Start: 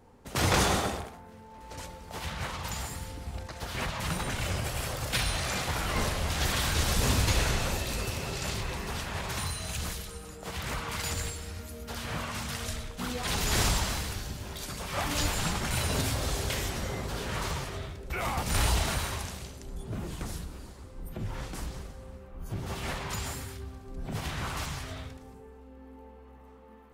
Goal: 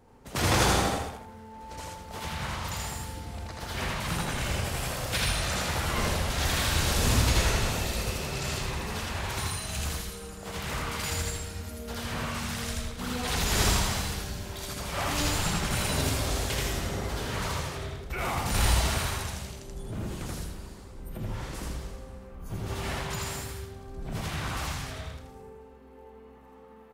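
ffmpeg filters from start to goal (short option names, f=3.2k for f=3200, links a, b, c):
-af "aecho=1:1:81.63|163.3:0.891|0.316,volume=-1dB"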